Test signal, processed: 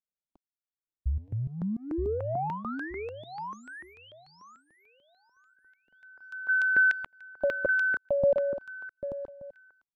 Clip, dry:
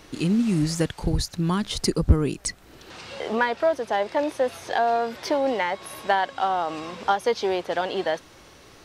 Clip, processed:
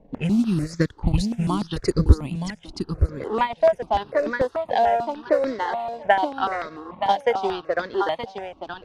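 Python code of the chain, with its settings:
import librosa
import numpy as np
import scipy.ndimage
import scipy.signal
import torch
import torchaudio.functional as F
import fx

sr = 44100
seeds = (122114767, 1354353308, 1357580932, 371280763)

y = fx.env_lowpass(x, sr, base_hz=510.0, full_db=-18.0)
y = fx.transient(y, sr, attack_db=4, sustain_db=-12)
y = fx.echo_feedback(y, sr, ms=923, feedback_pct=19, wet_db=-7.0)
y = fx.phaser_held(y, sr, hz=6.8, low_hz=350.0, high_hz=2900.0)
y = y * librosa.db_to_amplitude(2.5)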